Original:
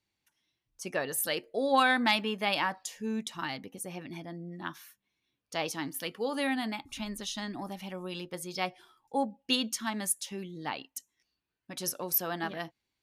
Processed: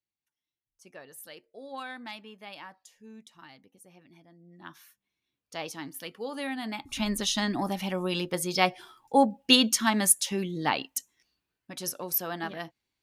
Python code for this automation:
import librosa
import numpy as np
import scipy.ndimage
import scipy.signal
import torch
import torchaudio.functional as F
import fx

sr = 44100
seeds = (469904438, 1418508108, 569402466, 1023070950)

y = fx.gain(x, sr, db=fx.line((4.37, -15.0), (4.81, -3.5), (6.56, -3.5), (7.07, 9.0), (10.95, 9.0), (11.79, 0.0)))